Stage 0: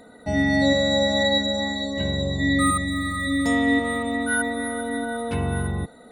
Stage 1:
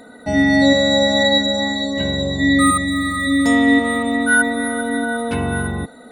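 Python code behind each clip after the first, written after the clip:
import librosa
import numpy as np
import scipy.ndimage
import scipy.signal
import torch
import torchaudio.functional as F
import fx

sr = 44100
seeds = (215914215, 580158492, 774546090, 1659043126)

y = fx.low_shelf(x, sr, hz=260.0, db=-6.0)
y = fx.small_body(y, sr, hz=(250.0, 1500.0), ring_ms=45, db=6)
y = y * 10.0 ** (6.0 / 20.0)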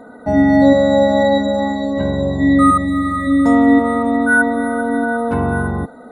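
y = fx.high_shelf_res(x, sr, hz=1800.0, db=-13.5, q=1.5)
y = y * 10.0 ** (3.0 / 20.0)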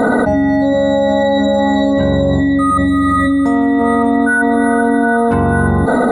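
y = fx.env_flatten(x, sr, amount_pct=100)
y = y * 10.0 ** (-4.5 / 20.0)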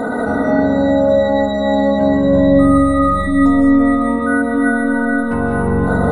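y = fx.rev_freeverb(x, sr, rt60_s=3.6, hf_ratio=0.35, predelay_ms=120, drr_db=-3.0)
y = y * 10.0 ** (-7.5 / 20.0)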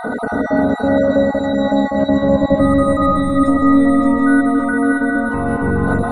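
y = fx.spec_dropout(x, sr, seeds[0], share_pct=21)
y = fx.echo_feedback(y, sr, ms=569, feedback_pct=40, wet_db=-4.0)
y = y * 10.0 ** (-1.0 / 20.0)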